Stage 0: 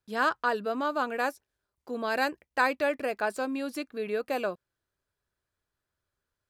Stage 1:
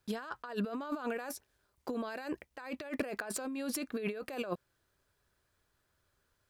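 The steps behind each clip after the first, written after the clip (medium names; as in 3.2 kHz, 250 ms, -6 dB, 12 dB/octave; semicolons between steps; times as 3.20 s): compressor with a negative ratio -39 dBFS, ratio -1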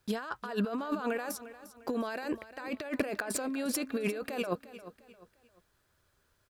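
feedback delay 351 ms, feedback 36%, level -15 dB; trim +4 dB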